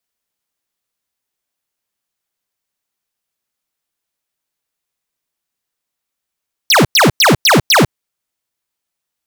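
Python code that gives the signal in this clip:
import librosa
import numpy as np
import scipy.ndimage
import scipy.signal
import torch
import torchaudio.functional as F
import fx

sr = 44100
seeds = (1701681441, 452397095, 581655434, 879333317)

y = fx.laser_zaps(sr, level_db=-8.5, start_hz=6300.0, end_hz=100.0, length_s=0.15, wave='square', shots=5, gap_s=0.1)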